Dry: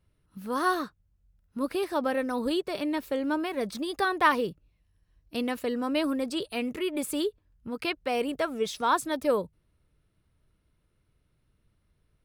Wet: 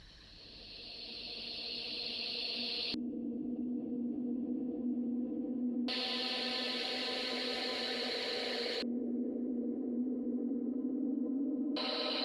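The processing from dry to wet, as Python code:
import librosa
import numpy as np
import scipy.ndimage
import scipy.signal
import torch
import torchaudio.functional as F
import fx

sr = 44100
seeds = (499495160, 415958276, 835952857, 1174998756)

y = fx.bass_treble(x, sr, bass_db=-6, treble_db=7)
y = fx.paulstretch(y, sr, seeds[0], factor=16.0, window_s=0.5, from_s=5.1)
y = fx.hpss(y, sr, part='harmonic', gain_db=-12)
y = fx.filter_lfo_lowpass(y, sr, shape='square', hz=0.17, low_hz=290.0, high_hz=4300.0, q=4.9)
y = fx.env_flatten(y, sr, amount_pct=50)
y = y * 10.0 ** (-3.0 / 20.0)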